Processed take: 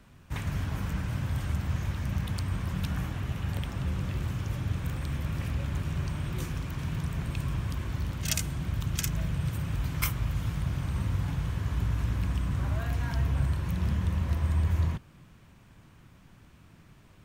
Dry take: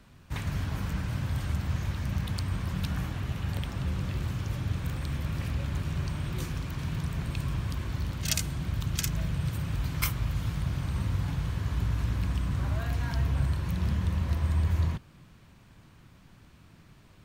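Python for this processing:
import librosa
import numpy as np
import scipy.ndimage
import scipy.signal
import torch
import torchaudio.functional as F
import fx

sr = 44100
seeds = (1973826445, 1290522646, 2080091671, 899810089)

y = fx.peak_eq(x, sr, hz=4300.0, db=-4.0, octaves=0.51)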